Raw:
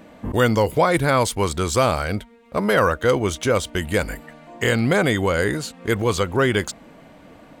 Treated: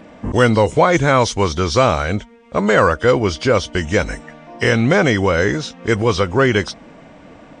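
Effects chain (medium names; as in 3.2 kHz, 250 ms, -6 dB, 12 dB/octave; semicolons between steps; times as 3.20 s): knee-point frequency compression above 2.9 kHz 1.5:1; trim +4.5 dB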